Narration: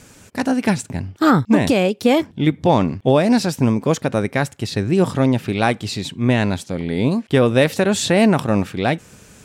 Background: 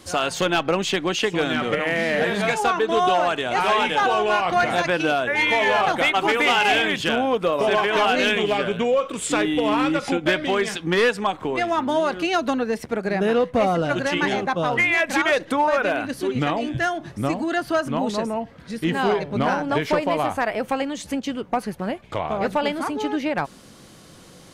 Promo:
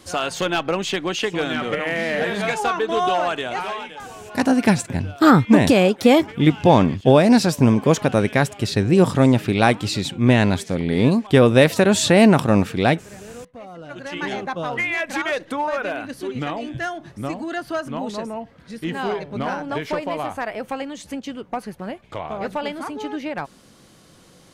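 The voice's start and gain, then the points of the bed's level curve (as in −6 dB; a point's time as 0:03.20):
4.00 s, +1.5 dB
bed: 0:03.44 −1 dB
0:04.09 −19.5 dB
0:13.66 −19.5 dB
0:14.28 −4 dB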